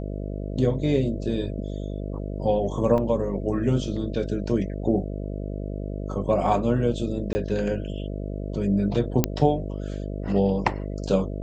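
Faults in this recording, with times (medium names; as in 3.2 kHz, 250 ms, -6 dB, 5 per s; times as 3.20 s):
buzz 50 Hz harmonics 13 -31 dBFS
2.98 s: dropout 3.5 ms
7.33–7.35 s: dropout 20 ms
9.24 s: pop -5 dBFS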